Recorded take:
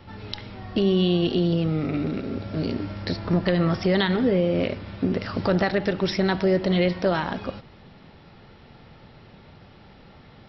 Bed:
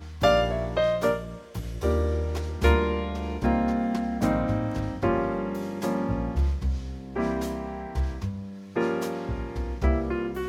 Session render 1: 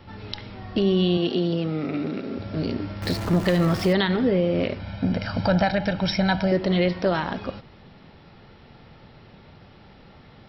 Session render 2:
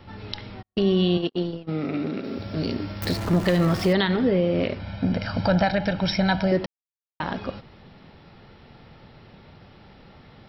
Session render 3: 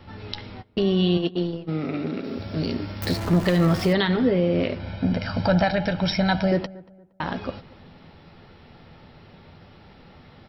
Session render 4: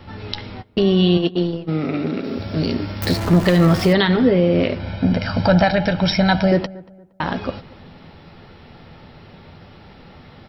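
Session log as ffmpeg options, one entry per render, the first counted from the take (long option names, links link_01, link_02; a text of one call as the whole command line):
ffmpeg -i in.wav -filter_complex "[0:a]asettb=1/sr,asplit=3[link_01][link_02][link_03];[link_01]atrim=end=1.174[link_04];[link_02]atrim=start=1.17:end=2.39,asetpts=PTS-STARTPTS,afade=type=in:duration=0.004:curve=qsin,afade=type=out:start_time=1.216:duration=0.004:curve=qsin,highpass=180[link_05];[link_03]atrim=start=2.386[link_06];[link_04][link_05]acrossfade=duration=0.004:curve1=hsin:curve2=qsin[link_07];[link_07][link_06]acrossfade=duration=0.004:curve1=qsin:curve2=hsin,asettb=1/sr,asplit=3[link_08][link_09][link_10];[link_08]atrim=end=3.024[link_11];[link_09]atrim=start=3.02:end=3.93,asetpts=PTS-STARTPTS,afade=type=in:duration=0.004:curve=qsin,afade=type=out:start_time=0.906:duration=0.004:curve=qsin,aeval=exprs='val(0)+0.5*0.0335*sgn(val(0))':channel_layout=same[link_12];[link_10]atrim=start=3.926[link_13];[link_11][link_12]acrossfade=duration=0.004:curve1=hsin:curve2=qsin[link_14];[link_14][link_13]acrossfade=duration=0.004:curve1=qsin:curve2=hsin,asettb=1/sr,asplit=3[link_15][link_16][link_17];[link_15]atrim=end=4.794[link_18];[link_16]atrim=start=4.79:end=6.52,asetpts=PTS-STARTPTS,afade=type=in:duration=0.004:curve=qsin,afade=type=out:start_time=1.726:duration=0.004:curve=qsin,aecho=1:1:1.3:0.75,atrim=end_sample=76293[link_19];[link_17]atrim=start=6.516[link_20];[link_18][link_19]acrossfade=duration=0.004:curve1=hsin:curve2=qsin[link_21];[link_21][link_20]acrossfade=duration=0.004:curve1=qsin:curve2=hsin" out.wav
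ffmpeg -i in.wav -filter_complex "[0:a]asplit=3[link_01][link_02][link_03];[link_01]afade=type=out:start_time=0.61:duration=0.02[link_04];[link_02]agate=range=-52dB:threshold=-23dB:ratio=16:release=100:detection=peak,afade=type=in:start_time=0.61:duration=0.02,afade=type=out:start_time=1.67:duration=0.02[link_05];[link_03]afade=type=in:start_time=1.67:duration=0.02[link_06];[link_04][link_05][link_06]amix=inputs=3:normalize=0,asettb=1/sr,asplit=3[link_07][link_08][link_09];[link_07]atrim=end=2.244[link_10];[link_08]atrim=start=2.24:end=3.05,asetpts=PTS-STARTPTS,afade=type=in:duration=0.004:curve=qsin,afade=type=out:start_time=0.806:duration=0.004:curve=qsin,aemphasis=mode=production:type=50fm[link_11];[link_09]atrim=start=3.046[link_12];[link_10][link_11]acrossfade=duration=0.004:curve1=hsin:curve2=qsin[link_13];[link_13][link_12]acrossfade=duration=0.004:curve1=qsin:curve2=hsin,asplit=3[link_14][link_15][link_16];[link_14]atrim=end=6.66,asetpts=PTS-STARTPTS,afade=type=out:start_time=6.656:duration=0.004:curve=hsin[link_17];[link_15]atrim=start=6.66:end=7.2,asetpts=PTS-STARTPTS,volume=0[link_18];[link_16]atrim=start=7.2,asetpts=PTS-STARTPTS,afade=type=in:duration=0.004:curve=hsin[link_19];[link_17][link_18][link_19]concat=n=3:v=0:a=1" out.wav
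ffmpeg -i in.wav -filter_complex "[0:a]asplit=2[link_01][link_02];[link_02]adelay=12,volume=-12dB[link_03];[link_01][link_03]amix=inputs=2:normalize=0,asplit=2[link_04][link_05];[link_05]adelay=233,lowpass=frequency=1400:poles=1,volume=-21dB,asplit=2[link_06][link_07];[link_07]adelay=233,lowpass=frequency=1400:poles=1,volume=0.34,asplit=2[link_08][link_09];[link_09]adelay=233,lowpass=frequency=1400:poles=1,volume=0.34[link_10];[link_04][link_06][link_08][link_10]amix=inputs=4:normalize=0" out.wav
ffmpeg -i in.wav -af "volume=5.5dB" out.wav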